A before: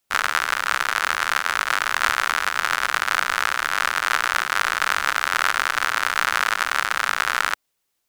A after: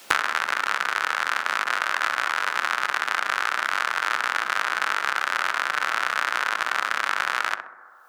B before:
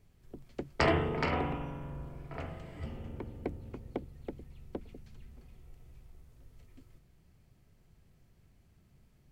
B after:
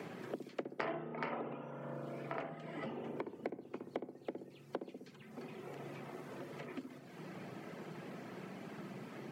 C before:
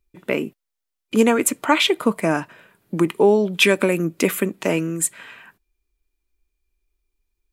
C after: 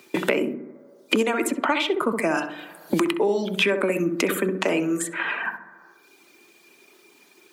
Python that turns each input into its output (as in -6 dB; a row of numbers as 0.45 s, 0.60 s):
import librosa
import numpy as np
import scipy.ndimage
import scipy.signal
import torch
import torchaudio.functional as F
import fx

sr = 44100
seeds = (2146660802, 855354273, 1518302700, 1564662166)

p1 = fx.dereverb_blind(x, sr, rt60_s=0.76)
p2 = scipy.signal.sosfilt(scipy.signal.bessel(8, 270.0, 'highpass', norm='mag', fs=sr, output='sos'), p1)
p3 = fx.high_shelf(p2, sr, hz=7400.0, db=-11.0)
p4 = fx.over_compress(p3, sr, threshold_db=-30.0, ratio=-1.0)
p5 = p3 + (p4 * 10.0 ** (-2.0 / 20.0))
p6 = fx.echo_filtered(p5, sr, ms=64, feedback_pct=44, hz=960.0, wet_db=-5)
p7 = fx.rev_fdn(p6, sr, rt60_s=1.1, lf_ratio=0.8, hf_ratio=0.3, size_ms=53.0, drr_db=15.5)
p8 = fx.band_squash(p7, sr, depth_pct=100)
y = p8 * 10.0 ** (-4.0 / 20.0)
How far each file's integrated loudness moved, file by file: -3.0 LU, -9.5 LU, -4.0 LU